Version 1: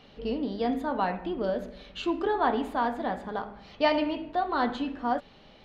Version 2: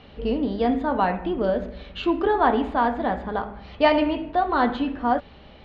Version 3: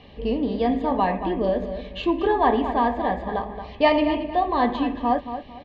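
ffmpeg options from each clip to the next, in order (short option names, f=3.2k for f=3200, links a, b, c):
-af "lowpass=3.5k,equalizer=f=68:t=o:w=0.62:g=14,volume=6dB"
-filter_complex "[0:a]asuperstop=centerf=1400:order=12:qfactor=4.3,asplit=2[a][b];[b]adelay=226,lowpass=f=4.1k:p=1,volume=-10dB,asplit=2[c][d];[d]adelay=226,lowpass=f=4.1k:p=1,volume=0.29,asplit=2[e][f];[f]adelay=226,lowpass=f=4.1k:p=1,volume=0.29[g];[c][e][g]amix=inputs=3:normalize=0[h];[a][h]amix=inputs=2:normalize=0"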